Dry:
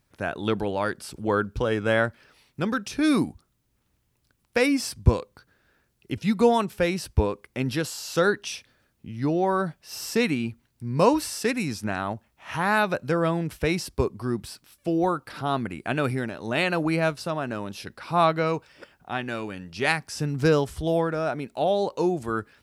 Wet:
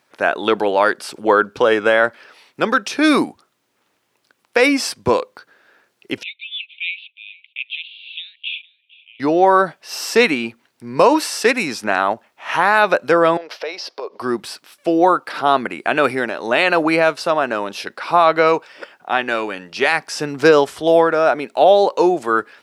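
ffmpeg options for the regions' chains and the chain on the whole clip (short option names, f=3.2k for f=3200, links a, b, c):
-filter_complex "[0:a]asettb=1/sr,asplit=3[a][b][c];[a]atrim=end=6.234[d];[b]atrim=start=6.23:end=9.2,asetpts=PTS-STARTPTS,afade=t=in:d=0.004:c=qsin,afade=t=out:st=2.966:d=0.004:c=qsin,asuperpass=centerf=2900:order=12:qfactor=2.1,aecho=1:1:458:0.0794,atrim=end_sample=130977[e];[c]atrim=start=9.196[f];[d][e]acrossfade=d=0.004:c1=hsin:c2=qsin[g];[g][f]acrossfade=d=0.004:c1=qsin:c2=hsin,asettb=1/sr,asplit=3[h][i][j];[h]atrim=end=13.374[k];[i]atrim=start=13.37:end=14.2,asetpts=PTS-STARTPTS,afade=t=in:d=0.004:c=qsin,afade=t=out:st=0.826:d=0.004:c=qsin,highshelf=f=6.5k:t=q:w=3:g=-9.5,acompressor=threshold=-34dB:ratio=10:attack=3.2:release=140:knee=1:detection=peak,highpass=f=550:t=q:w=2.4[l];[j]atrim=start=14.196[m];[k][l]acrossfade=d=0.004:c1=hsin:c2=qsin[n];[n][m]acrossfade=d=0.004:c1=qsin:c2=hsin,highpass=430,highshelf=f=6.6k:g=-11.5,alimiter=level_in=14.5dB:limit=-1dB:release=50:level=0:latency=1,volume=-1dB"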